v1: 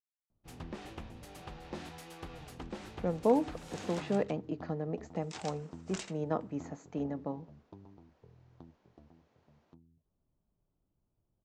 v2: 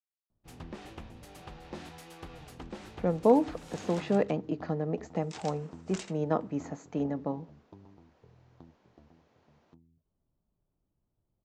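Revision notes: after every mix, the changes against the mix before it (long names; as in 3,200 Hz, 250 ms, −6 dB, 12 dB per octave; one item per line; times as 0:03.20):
speech +4.5 dB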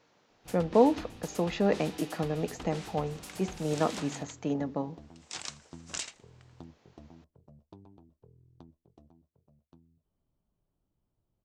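speech: entry −2.50 s
master: add high-shelf EQ 2,400 Hz +10 dB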